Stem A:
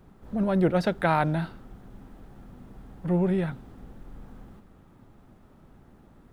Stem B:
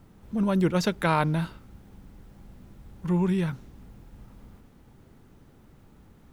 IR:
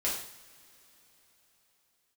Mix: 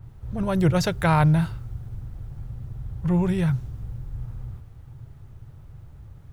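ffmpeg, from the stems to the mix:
-filter_complex "[0:a]volume=-5dB[a];[1:a]adynamicequalizer=threshold=0.00562:dfrequency=3900:dqfactor=0.7:tfrequency=3900:tqfactor=0.7:attack=5:release=100:ratio=0.375:range=3:mode=boostabove:tftype=highshelf,volume=-2dB[b];[a][b]amix=inputs=2:normalize=0,lowshelf=f=160:t=q:w=3:g=10.5"

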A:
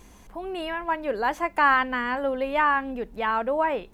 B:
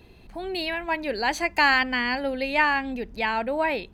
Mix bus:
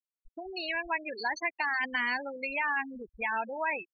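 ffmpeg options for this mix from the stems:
-filter_complex "[0:a]lowpass=3.5k,acompressor=threshold=-28dB:ratio=6,alimiter=level_in=11dB:limit=-24dB:level=0:latency=1:release=222,volume=-11dB,volume=-0.5dB[a];[1:a]alimiter=limit=-17.5dB:level=0:latency=1:release=15,adelay=17,volume=1.5dB[b];[a][b]amix=inputs=2:normalize=0,afftfilt=real='re*gte(hypot(re,im),0.1)':imag='im*gte(hypot(re,im),0.1)':win_size=1024:overlap=0.75,acrossover=split=960|2200[c][d][e];[c]acompressor=threshold=-44dB:ratio=4[f];[d]acompressor=threshold=-28dB:ratio=4[g];[e]acompressor=threshold=-40dB:ratio=4[h];[f][g][h]amix=inputs=3:normalize=0"

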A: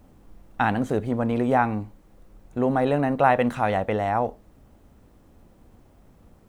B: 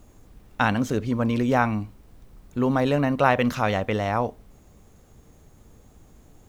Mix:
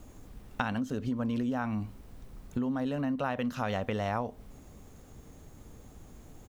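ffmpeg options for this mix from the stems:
-filter_complex "[0:a]asplit=3[a][b][c];[a]bandpass=f=270:t=q:w=8,volume=0dB[d];[b]bandpass=f=2.29k:t=q:w=8,volume=-6dB[e];[c]bandpass=f=3.01k:t=q:w=8,volume=-9dB[f];[d][e][f]amix=inputs=3:normalize=0,volume=0.5dB,asplit=2[g][h];[1:a]volume=-1,adelay=0.6,volume=1dB[i];[h]apad=whole_len=285832[j];[i][j]sidechaincompress=threshold=-36dB:ratio=4:attack=9.2:release=400[k];[g][k]amix=inputs=2:normalize=0,acompressor=threshold=-29dB:ratio=4"

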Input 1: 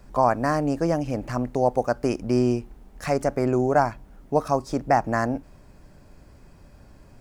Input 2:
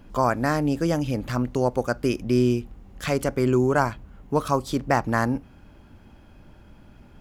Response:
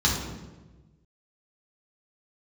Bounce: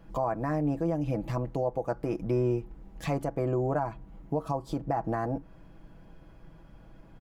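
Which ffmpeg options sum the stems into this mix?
-filter_complex "[0:a]lowpass=1.6k,volume=-4.5dB[a];[1:a]acompressor=threshold=-30dB:ratio=6,volume=-9dB[b];[a][b]amix=inputs=2:normalize=0,aecho=1:1:6.1:0.61,alimiter=limit=-19.5dB:level=0:latency=1:release=140"

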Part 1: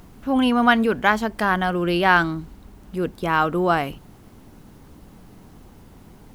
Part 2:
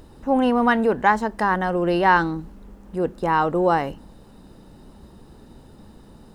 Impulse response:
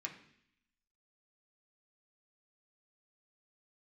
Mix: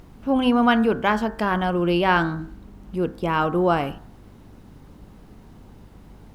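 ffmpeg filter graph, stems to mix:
-filter_complex "[0:a]bandreject=f=64.49:t=h:w=4,bandreject=f=128.98:t=h:w=4,bandreject=f=193.47:t=h:w=4,bandreject=f=257.96:t=h:w=4,bandreject=f=322.45:t=h:w=4,bandreject=f=386.94:t=h:w=4,bandreject=f=451.43:t=h:w=4,bandreject=f=515.92:t=h:w=4,bandreject=f=580.41:t=h:w=4,bandreject=f=644.9:t=h:w=4,bandreject=f=709.39:t=h:w=4,bandreject=f=773.88:t=h:w=4,bandreject=f=838.37:t=h:w=4,bandreject=f=902.86:t=h:w=4,bandreject=f=967.35:t=h:w=4,bandreject=f=1.03184k:t=h:w=4,bandreject=f=1.09633k:t=h:w=4,bandreject=f=1.16082k:t=h:w=4,bandreject=f=1.22531k:t=h:w=4,bandreject=f=1.2898k:t=h:w=4,bandreject=f=1.35429k:t=h:w=4,bandreject=f=1.41878k:t=h:w=4,bandreject=f=1.48327k:t=h:w=4,bandreject=f=1.54776k:t=h:w=4,bandreject=f=1.61225k:t=h:w=4,bandreject=f=1.67674k:t=h:w=4,bandreject=f=1.74123k:t=h:w=4,bandreject=f=1.80572k:t=h:w=4,bandreject=f=1.87021k:t=h:w=4,aeval=exprs='val(0)+0.00398*(sin(2*PI*50*n/s)+sin(2*PI*2*50*n/s)/2+sin(2*PI*3*50*n/s)/3+sin(2*PI*4*50*n/s)/4+sin(2*PI*5*50*n/s)/5)':c=same,volume=-1.5dB[a];[1:a]volume=-8.5dB[b];[a][b]amix=inputs=2:normalize=0,highshelf=f=5.9k:g=-7.5"

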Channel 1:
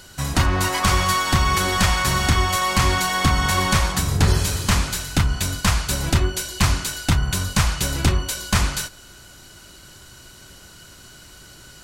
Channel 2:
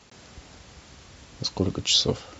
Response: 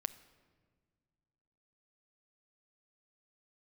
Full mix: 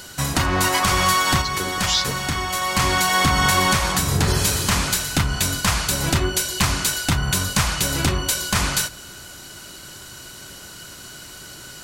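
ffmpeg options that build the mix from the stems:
-filter_complex "[0:a]highshelf=f=11k:g=4,volume=3dB,asplit=2[a][b];[b]volume=-7.5dB[c];[1:a]highshelf=f=3.1k:g=10.5,volume=-7dB,asplit=2[d][e];[e]apad=whole_len=521905[f];[a][f]sidechaincompress=threshold=-48dB:ratio=8:attack=5.9:release=568[g];[2:a]atrim=start_sample=2205[h];[c][h]afir=irnorm=-1:irlink=0[i];[g][d][i]amix=inputs=3:normalize=0,lowshelf=f=77:g=-11,alimiter=limit=-7dB:level=0:latency=1:release=212"

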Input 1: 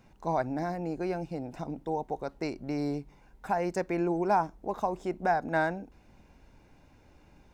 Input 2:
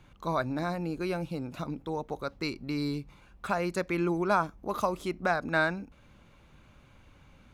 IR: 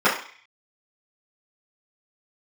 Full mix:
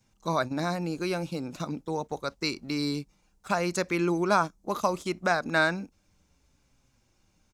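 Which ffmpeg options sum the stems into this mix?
-filter_complex "[0:a]acrossover=split=260|3000[a][b][c];[b]acompressor=threshold=-42dB:ratio=6[d];[a][d][c]amix=inputs=3:normalize=0,bass=f=250:g=6,treble=f=4k:g=12,asplit=2[e][f];[f]adelay=5.7,afreqshift=-0.71[g];[e][g]amix=inputs=2:normalize=1,volume=-12.5dB,asplit=2[h][i];[1:a]highpass=100,adelay=7.7,volume=2dB[j];[i]apad=whole_len=332529[k];[j][k]sidechaingate=range=-18dB:threshold=-56dB:ratio=16:detection=peak[l];[h][l]amix=inputs=2:normalize=0,equalizer=f=6.4k:t=o:w=1.4:g=9"

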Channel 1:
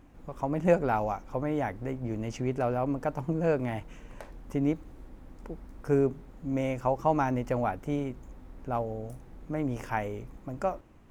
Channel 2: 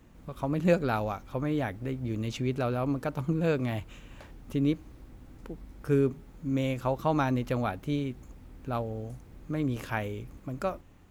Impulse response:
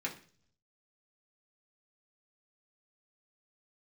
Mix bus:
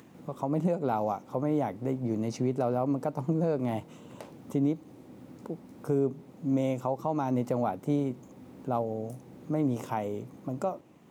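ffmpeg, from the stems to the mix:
-filter_complex "[0:a]highpass=f=130:w=0.5412,highpass=f=130:w=1.3066,equalizer=f=1.5k:t=o:w=0.74:g=-9,volume=2.5dB[a];[1:a]highpass=f=120:w=0.5412,highpass=f=120:w=1.3066,acompressor=mode=upward:threshold=-37dB:ratio=2.5,volume=-9dB[b];[a][b]amix=inputs=2:normalize=0,alimiter=limit=-18.5dB:level=0:latency=1:release=228"

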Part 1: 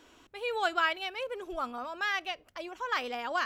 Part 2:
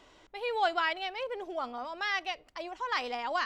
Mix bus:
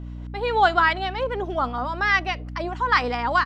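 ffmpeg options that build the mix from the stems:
-filter_complex "[0:a]volume=-9.5dB[a];[1:a]acrossover=split=880[b][c];[b]aeval=exprs='val(0)*(1-0.5/2+0.5/2*cos(2*PI*4.9*n/s))':c=same[d];[c]aeval=exprs='val(0)*(1-0.5/2-0.5/2*cos(2*PI*4.9*n/s))':c=same[e];[d][e]amix=inputs=2:normalize=0,adelay=0.4,volume=3dB[f];[a][f]amix=inputs=2:normalize=0,lowpass=f=2.7k:p=1,dynaudnorm=f=170:g=3:m=10.5dB,aeval=exprs='val(0)+0.0224*(sin(2*PI*60*n/s)+sin(2*PI*2*60*n/s)/2+sin(2*PI*3*60*n/s)/3+sin(2*PI*4*60*n/s)/4+sin(2*PI*5*60*n/s)/5)':c=same"

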